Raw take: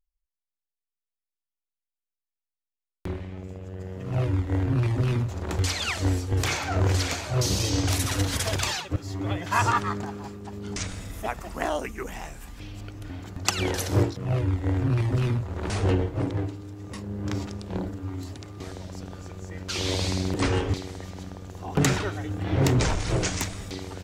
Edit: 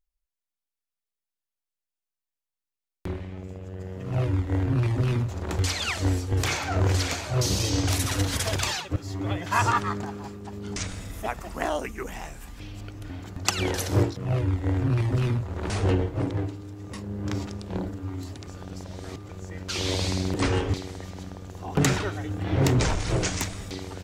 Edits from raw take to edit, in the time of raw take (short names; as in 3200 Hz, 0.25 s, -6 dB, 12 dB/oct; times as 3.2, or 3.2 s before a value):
18.47–19.29 reverse